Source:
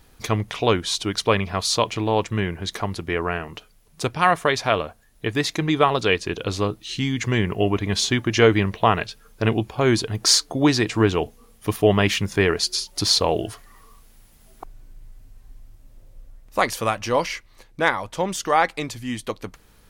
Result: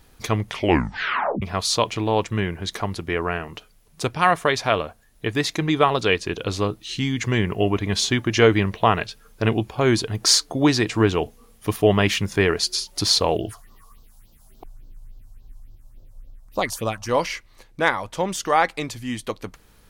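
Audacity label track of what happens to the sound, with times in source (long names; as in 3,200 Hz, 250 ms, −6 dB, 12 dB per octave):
0.510000	0.510000	tape stop 0.91 s
13.370000	17.090000	all-pass phaser stages 4, 3.5 Hz, lowest notch 320–2,100 Hz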